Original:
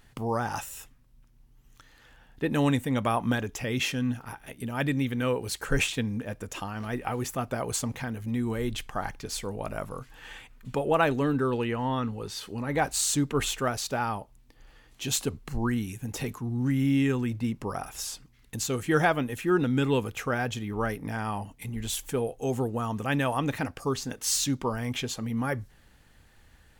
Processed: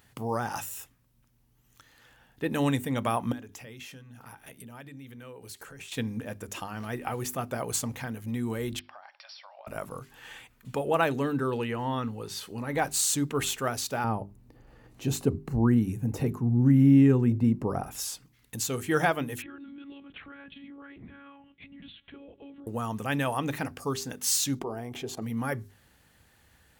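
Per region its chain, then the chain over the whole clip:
3.32–5.92 s: compression, threshold -41 dBFS + hum notches 50/100/150/200/250/300/350 Hz
8.79–9.67 s: brick-wall FIR band-pass 540–5700 Hz + compression 10:1, threshold -43 dBFS
14.04–17.91 s: tilt shelf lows +9 dB, about 1.1 kHz + band-stop 3.3 kHz, Q 14 + upward compressor, threshold -40 dBFS
19.42–22.67 s: high-order bell 730 Hz -9 dB 1.3 oct + compression 12:1, threshold -38 dBFS + monotone LPC vocoder at 8 kHz 280 Hz
24.59–25.22 s: bass shelf 120 Hz +7 dB + level held to a coarse grid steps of 20 dB + small resonant body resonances 390/690 Hz, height 15 dB, ringing for 20 ms
whole clip: high-pass 65 Hz; treble shelf 11 kHz +8.5 dB; hum notches 50/100/150/200/250/300/350/400 Hz; trim -1.5 dB

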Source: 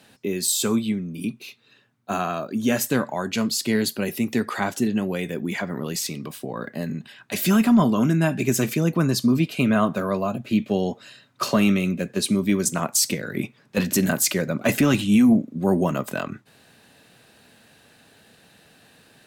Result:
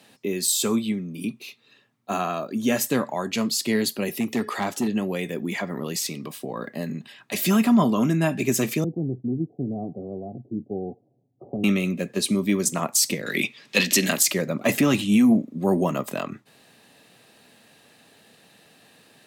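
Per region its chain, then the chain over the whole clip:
4.20–4.88 s: de-hum 425.5 Hz, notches 14 + hard clipper -17.5 dBFS
8.84–11.64 s: Chebyshev low-pass 730 Hz, order 6 + peaking EQ 520 Hz -12 dB 1.1 oct + comb 2.4 ms, depth 58%
13.26–14.23 s: frequency weighting D + three bands compressed up and down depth 40%
whole clip: Bessel high-pass 150 Hz; band-stop 1.5 kHz, Q 8.6

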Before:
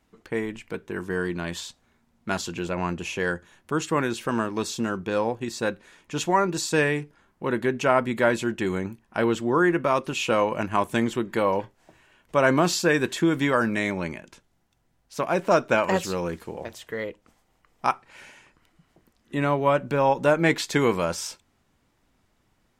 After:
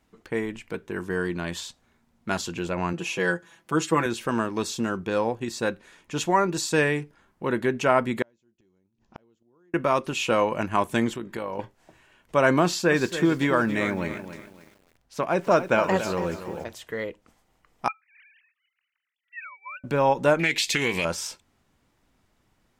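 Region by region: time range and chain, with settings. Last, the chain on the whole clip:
2.93–4.06 s: high-pass 160 Hz 6 dB/octave + comb 6 ms, depth 74%
8.22–9.74 s: peaking EQ 1.7 kHz -9.5 dB 1.9 oct + inverted gate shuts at -26 dBFS, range -39 dB + careless resampling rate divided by 3×, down none, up filtered
11.14–11.59 s: compression 5:1, threshold -26 dBFS + AM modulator 53 Hz, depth 30%
12.63–16.64 s: treble shelf 4.2 kHz -5 dB + bit-crushed delay 281 ms, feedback 35%, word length 8-bit, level -11 dB
17.88–19.84 s: formants replaced by sine waves + inverse Chebyshev high-pass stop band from 310 Hz, stop band 80 dB
20.39–21.05 s: resonant high shelf 1.8 kHz +9.5 dB, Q 3 + compression 3:1, threshold -22 dBFS + loudspeaker Doppler distortion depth 0.14 ms
whole clip: none

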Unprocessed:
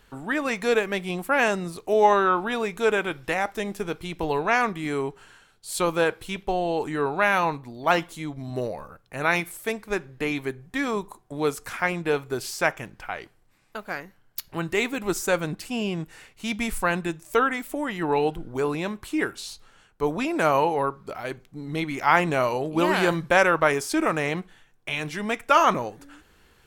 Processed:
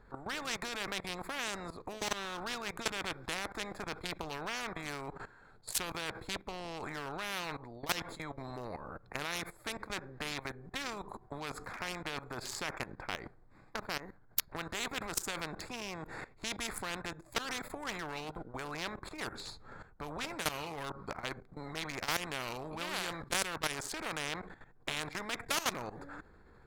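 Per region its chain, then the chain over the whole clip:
19.31–20.98 s: bass shelf 140 Hz +7 dB + doubling 13 ms -10 dB
whole clip: local Wiener filter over 15 samples; level held to a coarse grid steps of 18 dB; spectrum-flattening compressor 4:1

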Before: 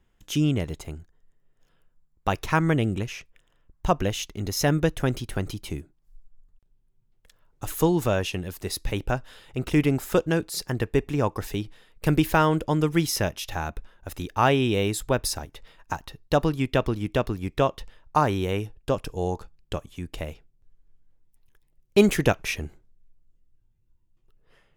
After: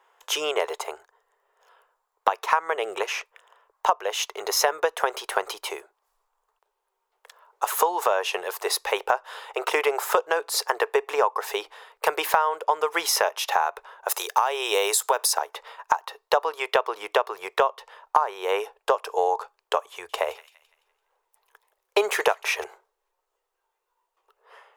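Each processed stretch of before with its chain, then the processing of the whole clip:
14.08–15.33 s: high-pass 58 Hz + tone controls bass -6 dB, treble +12 dB + compression 2:1, threshold -24 dBFS
19.92–22.64 s: peaking EQ 72 Hz +12 dB 0.75 oct + feedback echo behind a high-pass 169 ms, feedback 38%, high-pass 2.4 kHz, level -14 dB
whole clip: elliptic high-pass 420 Hz, stop band 40 dB; peaking EQ 980 Hz +13.5 dB 1.2 oct; compression 8:1, threshold -25 dBFS; trim +7 dB

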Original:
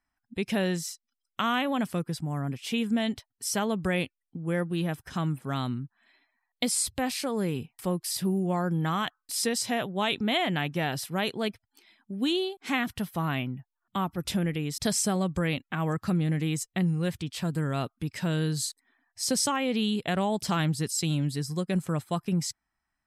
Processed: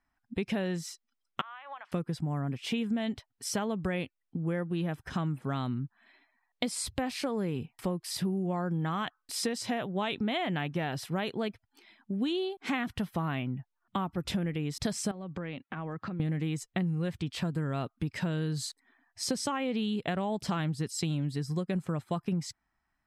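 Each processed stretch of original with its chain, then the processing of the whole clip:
1.41–1.92 s: high-pass 910 Hz 24 dB/octave + compression 16:1, threshold -37 dBFS + tape spacing loss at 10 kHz 34 dB
15.11–16.20 s: band-pass 140–3700 Hz + compression 16:1, threshold -37 dBFS
whole clip: low-pass 2.7 kHz 6 dB/octave; compression 4:1, threshold -33 dBFS; trim +4 dB

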